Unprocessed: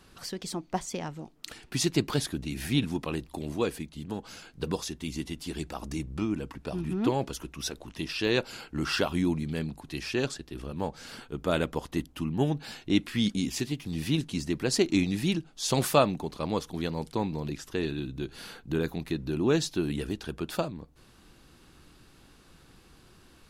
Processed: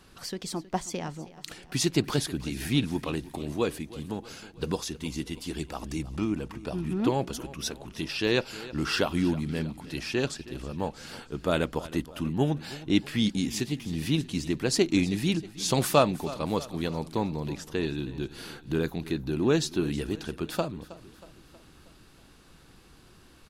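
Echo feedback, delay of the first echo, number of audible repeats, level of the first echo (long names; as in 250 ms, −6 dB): 53%, 318 ms, 4, −17.5 dB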